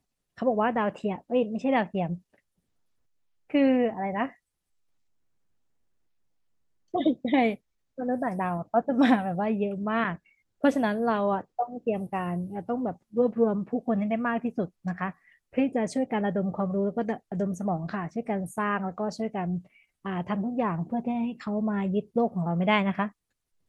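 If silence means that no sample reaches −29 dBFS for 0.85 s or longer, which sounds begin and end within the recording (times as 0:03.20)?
0:03.54–0:04.26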